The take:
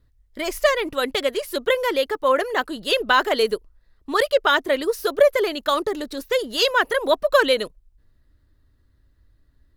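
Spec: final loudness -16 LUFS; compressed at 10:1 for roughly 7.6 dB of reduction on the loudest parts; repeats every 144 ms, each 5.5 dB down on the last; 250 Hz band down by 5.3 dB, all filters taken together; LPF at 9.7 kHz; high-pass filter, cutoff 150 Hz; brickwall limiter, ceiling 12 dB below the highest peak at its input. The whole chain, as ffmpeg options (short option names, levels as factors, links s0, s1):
-af "highpass=150,lowpass=9700,equalizer=f=250:t=o:g=-7,acompressor=threshold=0.126:ratio=10,alimiter=limit=0.106:level=0:latency=1,aecho=1:1:144|288|432|576|720|864|1008:0.531|0.281|0.149|0.079|0.0419|0.0222|0.0118,volume=4.22"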